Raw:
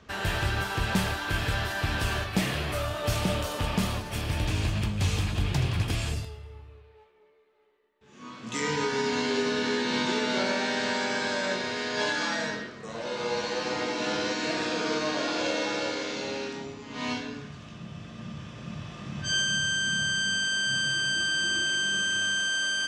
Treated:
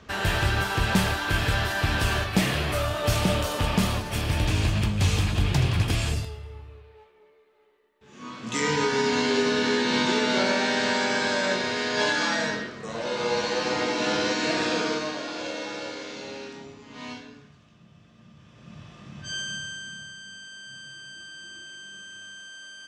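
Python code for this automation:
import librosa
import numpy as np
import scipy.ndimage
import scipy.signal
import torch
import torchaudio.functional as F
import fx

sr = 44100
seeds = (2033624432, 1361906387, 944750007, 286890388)

y = fx.gain(x, sr, db=fx.line((14.77, 4.0), (15.22, -4.5), (16.89, -4.5), (17.69, -13.0), (18.35, -13.0), (18.79, -6.0), (19.51, -6.0), (20.18, -15.5)))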